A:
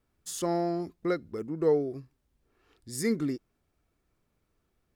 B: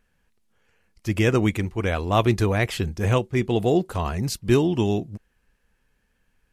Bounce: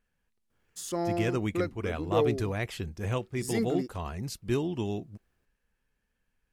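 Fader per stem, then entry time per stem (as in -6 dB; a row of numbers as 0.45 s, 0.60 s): -2.0 dB, -10.0 dB; 0.50 s, 0.00 s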